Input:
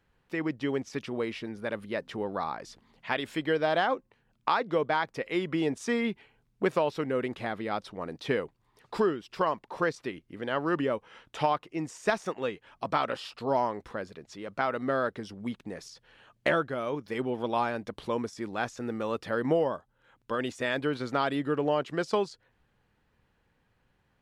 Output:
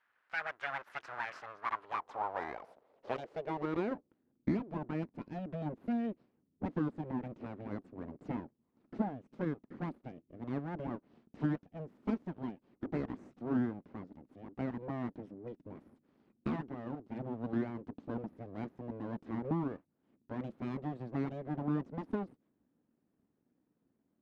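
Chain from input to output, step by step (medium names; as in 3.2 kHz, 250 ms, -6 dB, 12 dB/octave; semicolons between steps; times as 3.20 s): Bessel low-pass 6.4 kHz; full-wave rectifier; band-pass sweep 1.5 kHz -> 250 Hz, 1.25–4.36 s; trim +6 dB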